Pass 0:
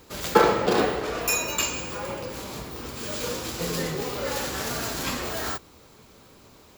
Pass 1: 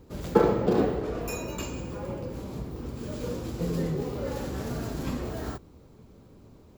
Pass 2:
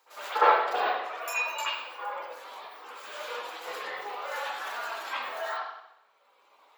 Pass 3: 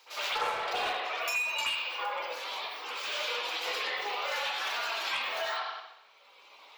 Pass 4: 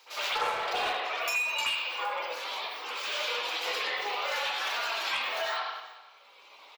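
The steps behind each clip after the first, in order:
tilt shelving filter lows +10 dB, about 660 Hz; level −5 dB
reverb reduction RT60 1.9 s; high-pass filter 830 Hz 24 dB per octave; convolution reverb, pre-delay 61 ms, DRR −13.5 dB
flat-topped bell 3,600 Hz +9.5 dB; in parallel at −6 dB: wave folding −24.5 dBFS; on the sum: downward compressor 5 to 1, threshold −30 dBFS, peak gain reduction 14 dB
single-tap delay 388 ms −20.5 dB; level +1.5 dB

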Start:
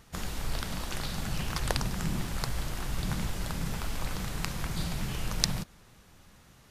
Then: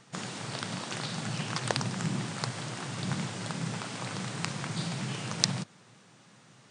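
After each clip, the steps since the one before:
brick-wall band-pass 100–9,600 Hz
level +1.5 dB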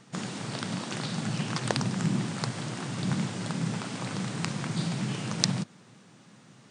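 parametric band 230 Hz +6.5 dB 1.5 octaves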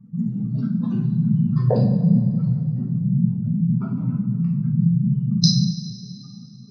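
expanding power law on the bin magnitudes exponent 3.8
coupled-rooms reverb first 0.53 s, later 2.6 s, from −15 dB, DRR −6.5 dB
level +4.5 dB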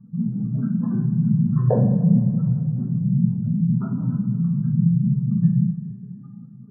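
linear-phase brick-wall low-pass 1,800 Hz

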